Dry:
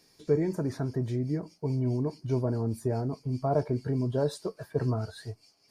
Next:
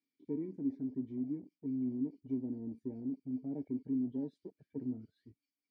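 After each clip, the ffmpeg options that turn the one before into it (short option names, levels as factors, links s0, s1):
-filter_complex "[0:a]asplit=3[s0][s1][s2];[s0]bandpass=f=270:t=q:w=8,volume=1[s3];[s1]bandpass=f=2290:t=q:w=8,volume=0.501[s4];[s2]bandpass=f=3010:t=q:w=8,volume=0.355[s5];[s3][s4][s5]amix=inputs=3:normalize=0,afwtdn=0.00447,volume=1.12"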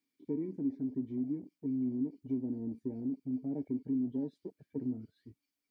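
-af "acompressor=threshold=0.0112:ratio=1.5,volume=1.68"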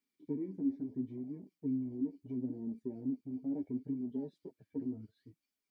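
-af "flanger=delay=4.7:depth=6.2:regen=17:speed=0.72:shape=sinusoidal,volume=1.12"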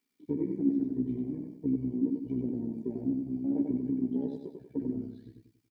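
-af "tremolo=f=64:d=0.571,aecho=1:1:94|188|282|376|470:0.631|0.259|0.106|0.0435|0.0178,volume=2.51"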